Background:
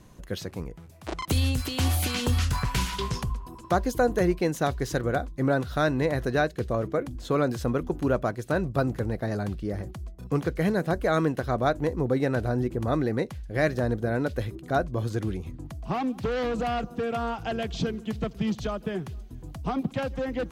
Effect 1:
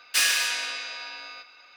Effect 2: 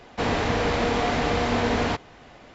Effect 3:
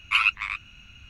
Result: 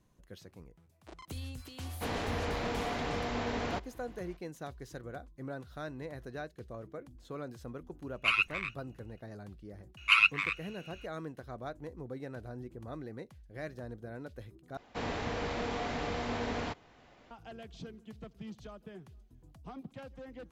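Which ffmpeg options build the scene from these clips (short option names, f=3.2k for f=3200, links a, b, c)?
-filter_complex "[2:a]asplit=2[a][b];[3:a]asplit=2[c][d];[0:a]volume=-17.5dB[e];[c]agate=range=-16dB:threshold=-45dB:ratio=16:release=100:detection=peak[f];[d]highpass=f=770:p=1[g];[e]asplit=2[h][i];[h]atrim=end=14.774[j];[b]atrim=end=2.54,asetpts=PTS-STARTPTS,volume=-12dB[k];[i]atrim=start=17.306[l];[a]atrim=end=2.54,asetpts=PTS-STARTPTS,volume=-11.5dB,afade=t=in:d=0.004:c=hsin,afade=t=out:st=2.536:d=0.004:c=hsin,adelay=1830[m];[f]atrim=end=1.09,asetpts=PTS-STARTPTS,volume=-7dB,afade=t=in:d=0.004:c=hsin,afade=t=out:st=1.086:d=0.004:c=hsin,adelay=8130[n];[g]atrim=end=1.09,asetpts=PTS-STARTPTS,volume=-2dB,afade=t=in:d=0.004:c=hsin,afade=t=out:st=1.086:d=0.004:c=hsin,adelay=9970[o];[j][k]acrossfade=d=0.004:c1=hsin:c2=hsin[p];[p][l]acrossfade=d=0.004:c1=hsin:c2=hsin[q];[q][m][n][o]amix=inputs=4:normalize=0"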